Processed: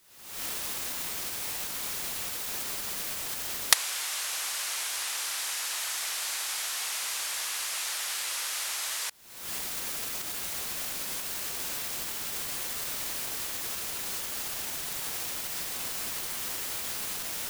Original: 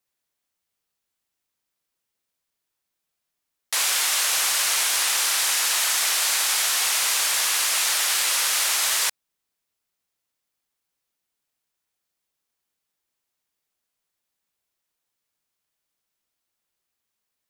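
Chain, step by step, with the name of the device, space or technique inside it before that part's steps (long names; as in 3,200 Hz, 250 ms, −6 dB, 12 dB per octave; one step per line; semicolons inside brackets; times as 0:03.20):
cheap recorder with automatic gain (white noise bed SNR 25 dB; camcorder AGC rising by 69 dB per second)
level −11 dB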